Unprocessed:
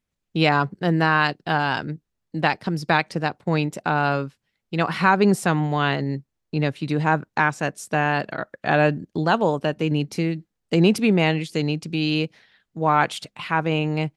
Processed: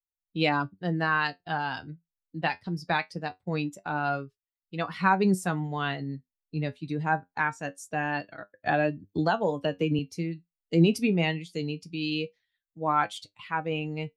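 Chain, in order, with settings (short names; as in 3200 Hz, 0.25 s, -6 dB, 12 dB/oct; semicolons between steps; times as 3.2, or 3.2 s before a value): per-bin expansion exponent 1.5; flange 0.23 Hz, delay 9.6 ms, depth 2.5 ms, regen +59%; 8.66–9.99 three-band squash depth 100%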